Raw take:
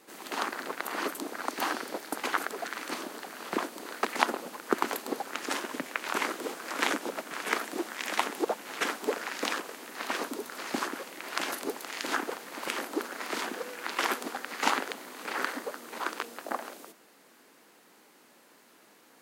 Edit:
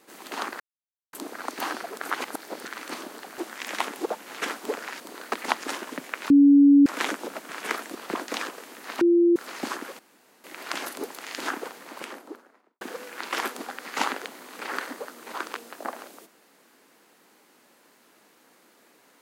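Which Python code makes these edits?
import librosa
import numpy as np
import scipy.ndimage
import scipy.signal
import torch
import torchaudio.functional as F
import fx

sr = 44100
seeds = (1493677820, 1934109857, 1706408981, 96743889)

y = fx.studio_fade_out(x, sr, start_s=12.28, length_s=1.19)
y = fx.edit(y, sr, fx.silence(start_s=0.6, length_s=0.53),
    fx.reverse_span(start_s=1.83, length_s=0.82),
    fx.swap(start_s=3.38, length_s=0.33, other_s=7.77, other_length_s=1.62),
    fx.cut(start_s=4.25, length_s=1.11),
    fx.bleep(start_s=6.12, length_s=0.56, hz=283.0, db=-11.0),
    fx.bleep(start_s=10.12, length_s=0.35, hz=344.0, db=-15.0),
    fx.insert_room_tone(at_s=11.1, length_s=0.45), tone=tone)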